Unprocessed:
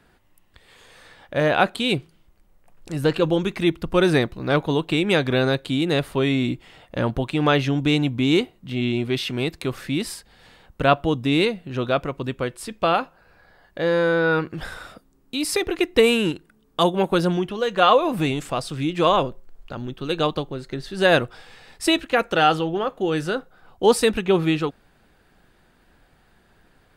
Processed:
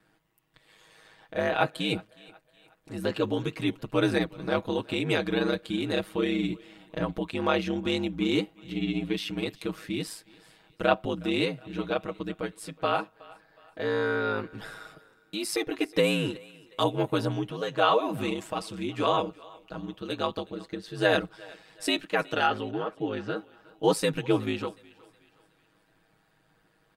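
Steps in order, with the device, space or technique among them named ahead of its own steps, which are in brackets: HPF 71 Hz; 22.46–23.36 air absorption 170 m; thinning echo 0.367 s, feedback 45%, high-pass 350 Hz, level -22 dB; ring-modulated robot voice (ring modulator 53 Hz; comb 6.3 ms, depth 76%); gain -6 dB

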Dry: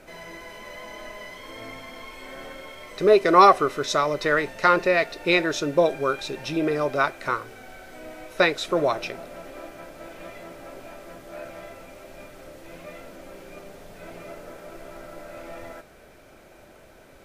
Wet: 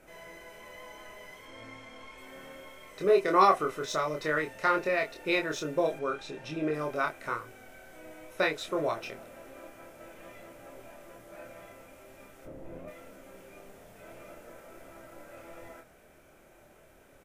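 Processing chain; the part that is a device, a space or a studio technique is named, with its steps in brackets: 1.45–2.18 LPF 7900 Hz 12 dB/oct; exciter from parts (in parallel at -4.5 dB: HPF 4100 Hz 24 dB/oct + soft clip -35 dBFS, distortion -7 dB); 12.45–12.88 on the sum: tilt shelf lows +10 dB, about 1200 Hz; doubler 26 ms -4 dB; 5.99–6.74 air absorption 50 m; gain -9 dB

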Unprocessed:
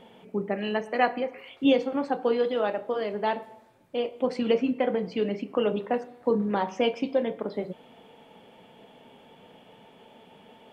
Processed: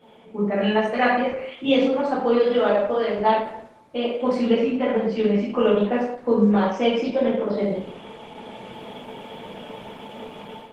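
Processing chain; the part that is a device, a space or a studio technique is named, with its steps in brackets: 5.29–5.89 dynamic EQ 100 Hz, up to -3 dB, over -51 dBFS, Q 2; far-field microphone of a smart speaker (reverb RT60 0.65 s, pre-delay 5 ms, DRR -8 dB; HPF 85 Hz 24 dB/oct; AGC gain up to 13.5 dB; gain -6.5 dB; Opus 16 kbps 48000 Hz)

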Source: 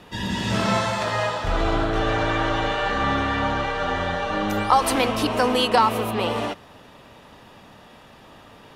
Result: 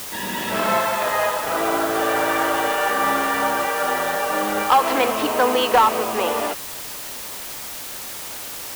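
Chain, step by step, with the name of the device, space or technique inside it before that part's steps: aircraft radio (BPF 350–2600 Hz; hard clip -13 dBFS, distortion -18 dB; white noise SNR 11 dB); gain +4 dB

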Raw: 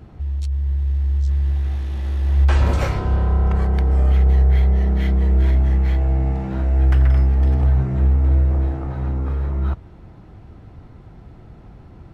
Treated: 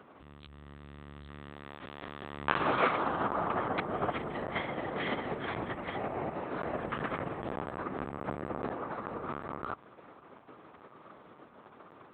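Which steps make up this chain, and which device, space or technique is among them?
4.39–5.56 flutter echo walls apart 6.4 m, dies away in 0.54 s; talking toy (LPC vocoder at 8 kHz pitch kept; HPF 390 Hz 12 dB/oct; bell 1200 Hz +8 dB 0.4 oct); gain -3 dB

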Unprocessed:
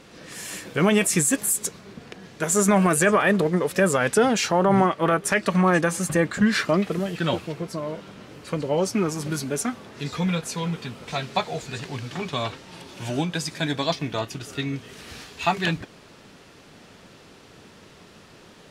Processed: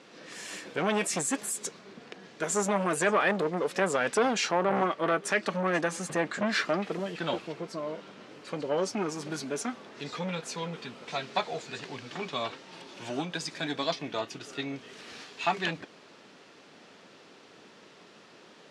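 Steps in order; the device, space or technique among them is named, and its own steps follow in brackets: public-address speaker with an overloaded transformer (core saturation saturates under 760 Hz; BPF 240–6700 Hz); gain -3.5 dB

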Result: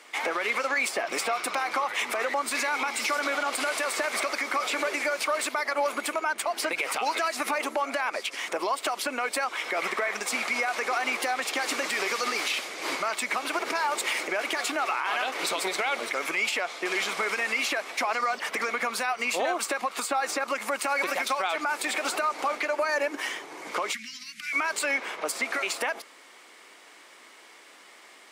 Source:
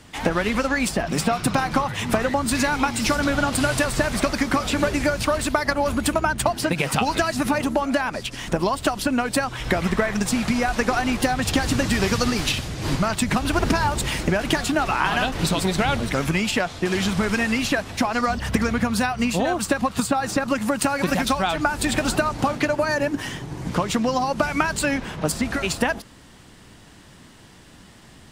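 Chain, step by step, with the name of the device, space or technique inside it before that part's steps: laptop speaker (HPF 390 Hz 24 dB/oct; bell 1200 Hz +5 dB 0.31 oct; bell 2200 Hz +11 dB 0.22 oct; limiter -16 dBFS, peak gain reduction 12.5 dB); 23.93–24.53 elliptic band-stop 200–1900 Hz, stop band 50 dB; gain -2 dB

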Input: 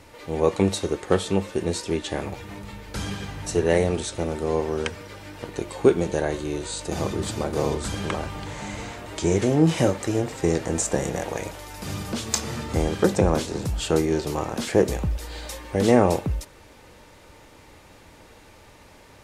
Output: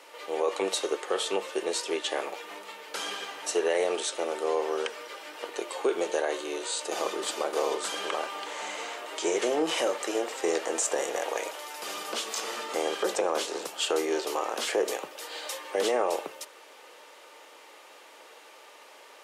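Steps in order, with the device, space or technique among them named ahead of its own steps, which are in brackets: laptop speaker (HPF 410 Hz 24 dB/oct; bell 1200 Hz +4 dB 0.22 oct; bell 3000 Hz +5 dB 0.31 oct; limiter -17 dBFS, peak gain reduction 13 dB)

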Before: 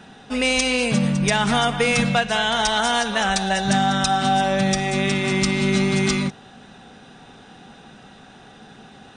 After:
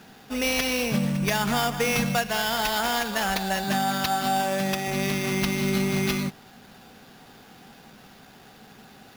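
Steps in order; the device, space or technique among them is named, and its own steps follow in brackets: 3.64–4.88 HPF 180 Hz 12 dB/oct; early 8-bit sampler (sample-rate reducer 8300 Hz, jitter 0%; bit-crush 8-bit); gain -5 dB

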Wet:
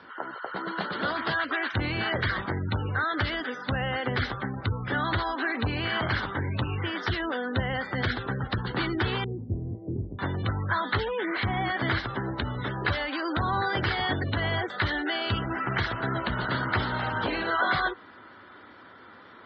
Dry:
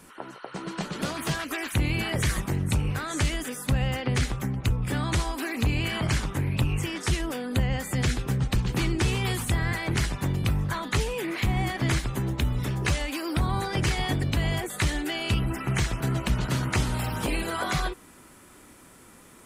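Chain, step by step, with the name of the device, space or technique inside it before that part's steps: overdrive pedal into a guitar cabinet (overdrive pedal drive 11 dB, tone 6000 Hz, clips at -16 dBFS; speaker cabinet 81–4300 Hz, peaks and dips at 98 Hz +8 dB, 150 Hz -7 dB, 1500 Hz +5 dB, 2500 Hz -10 dB); spectral gate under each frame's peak -25 dB strong; 9.24–10.19 inverse Chebyshev low-pass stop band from 1400 Hz, stop band 60 dB

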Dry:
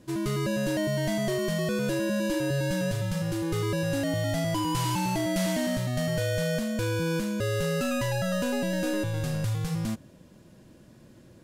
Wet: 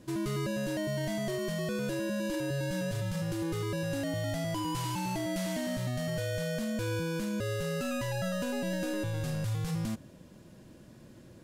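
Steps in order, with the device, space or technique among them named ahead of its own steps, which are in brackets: clipper into limiter (hard clip -19 dBFS, distortion -46 dB; limiter -26 dBFS, peak gain reduction 7 dB)

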